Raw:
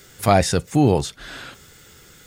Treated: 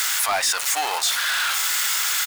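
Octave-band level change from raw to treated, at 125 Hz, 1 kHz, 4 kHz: below −35 dB, −1.0 dB, +11.0 dB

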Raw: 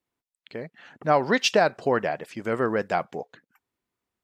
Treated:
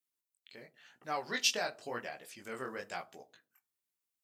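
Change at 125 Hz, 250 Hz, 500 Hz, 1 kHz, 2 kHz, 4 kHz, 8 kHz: −21.0, −19.0, −18.0, −15.0, −11.0, −5.5, −2.0 decibels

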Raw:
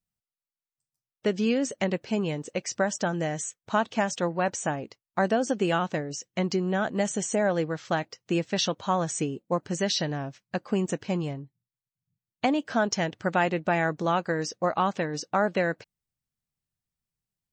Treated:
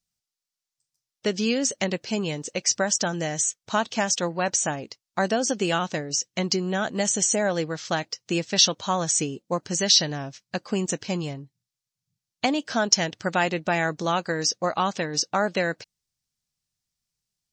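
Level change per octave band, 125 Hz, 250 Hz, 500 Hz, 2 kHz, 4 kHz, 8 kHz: 0.0, 0.0, +0.5, +2.5, +9.5, +11.0 decibels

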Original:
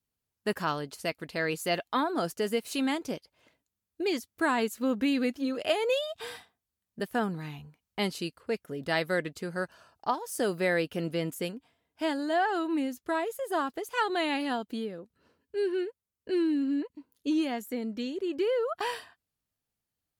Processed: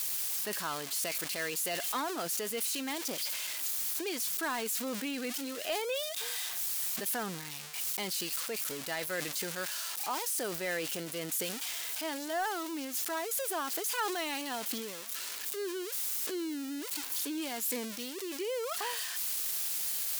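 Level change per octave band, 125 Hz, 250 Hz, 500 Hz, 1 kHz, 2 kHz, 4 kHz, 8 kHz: −10.0, −9.5, −7.5, −5.5, −3.5, +1.5, +12.5 decibels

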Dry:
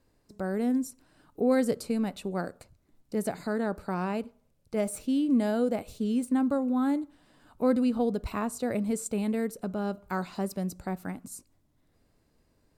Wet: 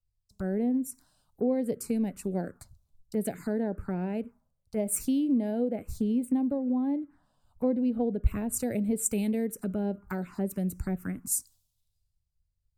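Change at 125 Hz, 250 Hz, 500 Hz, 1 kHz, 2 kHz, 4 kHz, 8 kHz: +2.5 dB, −0.5 dB, −2.0 dB, −7.0 dB, −6.5 dB, can't be measured, +7.5 dB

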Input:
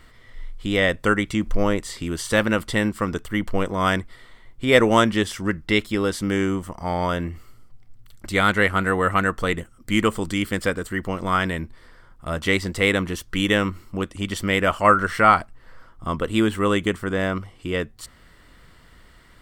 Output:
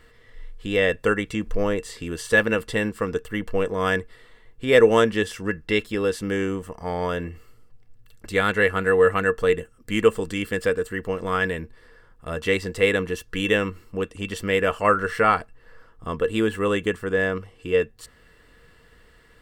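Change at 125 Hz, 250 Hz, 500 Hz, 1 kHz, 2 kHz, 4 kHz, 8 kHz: −4.5, −4.0, +2.5, −4.5, −1.0, −4.0, −4.5 decibels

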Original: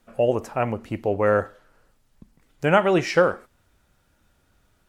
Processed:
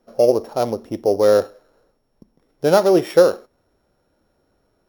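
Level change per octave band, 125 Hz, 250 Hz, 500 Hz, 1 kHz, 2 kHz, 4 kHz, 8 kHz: −2.5, +3.5, +6.5, +0.5, −5.5, +4.0, +7.5 decibels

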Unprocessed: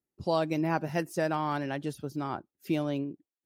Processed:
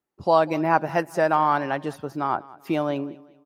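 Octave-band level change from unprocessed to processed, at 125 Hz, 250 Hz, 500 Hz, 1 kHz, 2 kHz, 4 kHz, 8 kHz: +1.0 dB, +3.5 dB, +8.5 dB, +12.0 dB, +8.5 dB, +3.0 dB, can't be measured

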